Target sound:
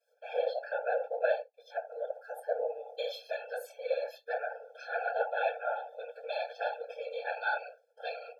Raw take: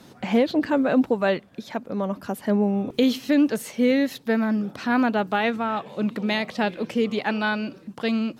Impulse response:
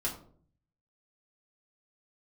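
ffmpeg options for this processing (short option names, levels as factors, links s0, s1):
-filter_complex "[0:a]lowshelf=f=300:t=q:w=1.5:g=-6,aeval=exprs='val(0)*gte(abs(val(0)),0.00447)':c=same[s0];[1:a]atrim=start_sample=2205,atrim=end_sample=4410[s1];[s0][s1]afir=irnorm=-1:irlink=0,afftdn=nr=17:nf=-42,asuperstop=centerf=970:order=12:qfactor=7.9,afftfilt=real='hypot(re,im)*cos(2*PI*random(0))':imag='hypot(re,im)*sin(2*PI*random(1))':win_size=512:overlap=0.75,adynamicequalizer=threshold=0.002:dfrequency=8000:dqfactor=1:tfrequency=8000:tqfactor=1:attack=5:release=100:ratio=0.375:range=3:mode=cutabove:tftype=bell,afftfilt=real='re*eq(mod(floor(b*sr/1024/450),2),1)':imag='im*eq(mod(floor(b*sr/1024/450),2),1)':win_size=1024:overlap=0.75,volume=0.562"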